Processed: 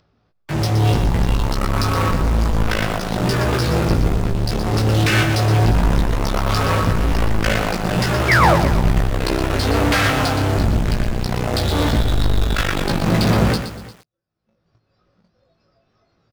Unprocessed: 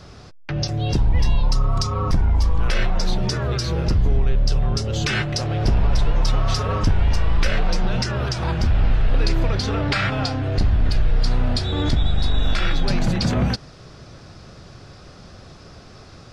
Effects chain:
on a send: single-tap delay 126 ms −21 dB
on the sum: noise reduction from a noise print of the clip's start 16 dB
high-frequency loss of the air 200 metres
in parallel at −10 dB: fuzz pedal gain 44 dB, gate −39 dBFS
on the sum: leveller curve on the samples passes 2
sound drawn into the spectrogram fall, 0:08.28–0:08.55, 520–2,400 Hz −14 dBFS
downward expander −10 dBFS
double-tracking delay 18 ms −4 dB
single-tap delay 350 ms −19.5 dB
upward compression, threshold −33 dBFS
low-shelf EQ 83 Hz −7.5 dB
feedback echo at a low word length 120 ms, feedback 35%, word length 6 bits, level −8 dB
level −1.5 dB

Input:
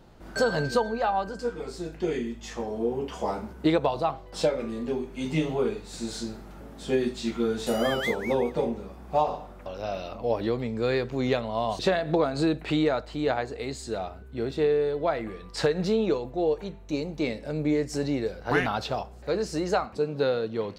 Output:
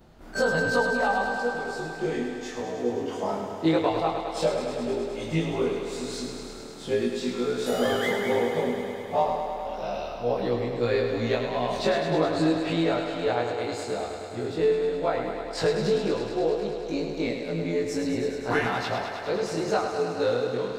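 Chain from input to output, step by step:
every overlapping window played backwards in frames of 50 ms
feedback echo with a high-pass in the loop 104 ms, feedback 83%, high-pass 160 Hz, level −7 dB
level +2.5 dB

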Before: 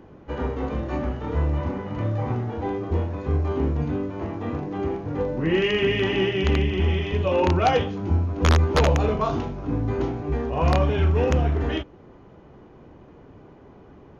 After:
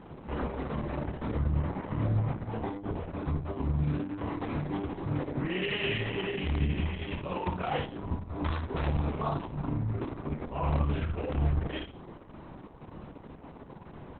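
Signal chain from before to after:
downward compressor 4 to 1, threshold −33 dBFS, peak gain reduction 15 dB
graphic EQ with 15 bands 160 Hz +4 dB, 400 Hz −3 dB, 1,000 Hz +4 dB
bit reduction 11 bits
0:03.76–0:05.99: high-shelf EQ 3,200 Hz → 2,300 Hz +7.5 dB
flutter between parallel walls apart 4.7 metres, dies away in 0.38 s
Opus 6 kbit/s 48,000 Hz

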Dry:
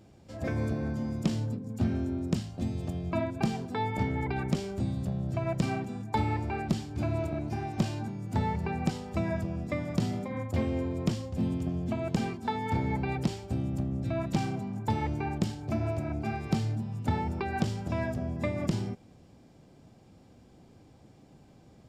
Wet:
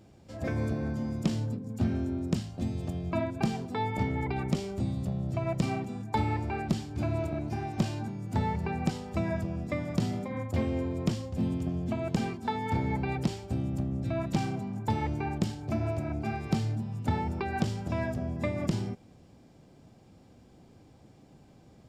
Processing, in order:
0:03.63–0:05.98: notch filter 1,600 Hz, Q 12

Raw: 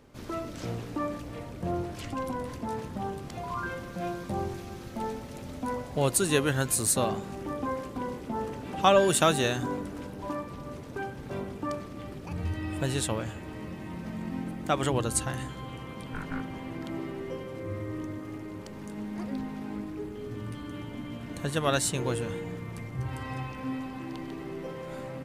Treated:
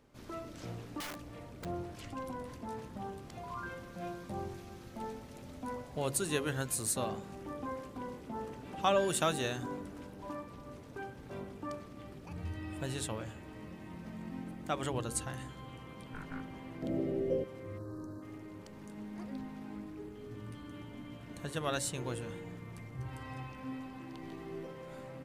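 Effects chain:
hum removal 46.69 Hz, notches 12
0:01.00–0:01.65: wrap-around overflow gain 29 dB
0:16.82–0:17.44: low shelf with overshoot 740 Hz +9 dB, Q 3
0:17.78–0:18.22: gain on a spectral selection 1,800–3,800 Hz −26 dB
0:24.21–0:24.65: double-tracking delay 18 ms −3.5 dB
level −8 dB

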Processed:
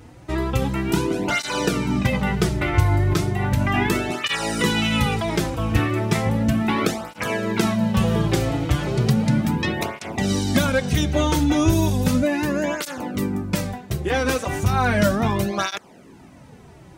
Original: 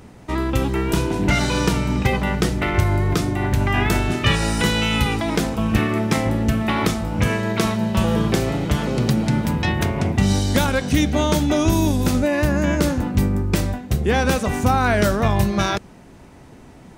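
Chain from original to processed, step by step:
0:12.23–0:14.52: low-shelf EQ 110 Hz −10.5 dB
through-zero flanger with one copy inverted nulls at 0.35 Hz, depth 5.3 ms
level +1.5 dB

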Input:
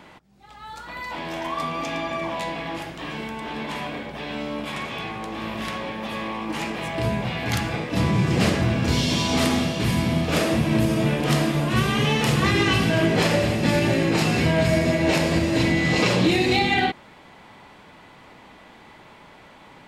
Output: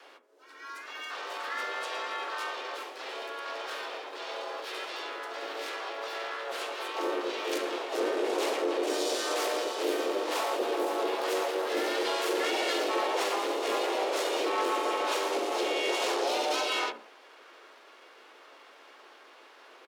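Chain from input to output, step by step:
on a send at −10.5 dB: parametric band 4,800 Hz −14.5 dB 1.1 octaves + convolution reverb RT60 0.60 s, pre-delay 4 ms
on the sum: tube saturation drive 20 dB, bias 0.4
frequency shifter +230 Hz
pitch-shifted copies added −3 semitones −12 dB, +4 semitones 0 dB, +7 semitones −4 dB
level −9 dB

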